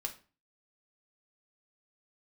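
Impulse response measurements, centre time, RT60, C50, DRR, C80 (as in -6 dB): 9 ms, 0.35 s, 13.5 dB, 3.5 dB, 19.0 dB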